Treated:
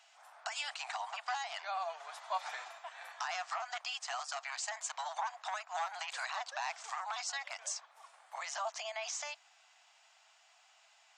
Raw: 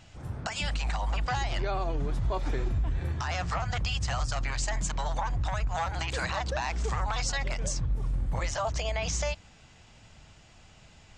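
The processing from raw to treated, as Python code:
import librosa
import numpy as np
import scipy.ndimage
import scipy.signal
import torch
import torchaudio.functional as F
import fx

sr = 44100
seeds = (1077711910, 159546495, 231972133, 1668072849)

y = scipy.signal.sosfilt(scipy.signal.cheby1(5, 1.0, 680.0, 'highpass', fs=sr, output='sos'), x)
y = fx.rider(y, sr, range_db=5, speed_s=0.5)
y = y * 10.0 ** (-4.0 / 20.0)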